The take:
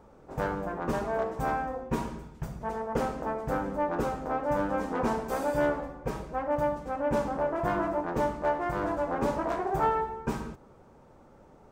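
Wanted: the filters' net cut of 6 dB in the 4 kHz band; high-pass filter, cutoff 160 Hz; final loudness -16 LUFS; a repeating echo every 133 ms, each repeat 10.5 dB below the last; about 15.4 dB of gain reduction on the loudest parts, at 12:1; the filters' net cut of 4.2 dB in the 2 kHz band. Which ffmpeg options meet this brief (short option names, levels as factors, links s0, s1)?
-af "highpass=160,equalizer=f=2000:t=o:g=-5,equalizer=f=4000:t=o:g=-6.5,acompressor=threshold=0.0112:ratio=12,aecho=1:1:133|266|399:0.299|0.0896|0.0269,volume=22.4"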